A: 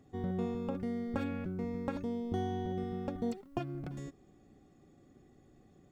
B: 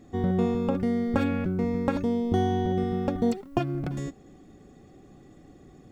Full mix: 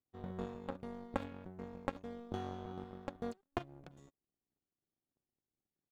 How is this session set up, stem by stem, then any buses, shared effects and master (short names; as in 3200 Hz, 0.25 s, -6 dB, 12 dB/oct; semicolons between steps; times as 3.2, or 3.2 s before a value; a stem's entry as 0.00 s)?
+3.0 dB, 0.00 s, no send, dry
-18.0 dB, 0.3 ms, no send, HPF 300 Hz 24 dB/oct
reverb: off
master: power-law curve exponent 2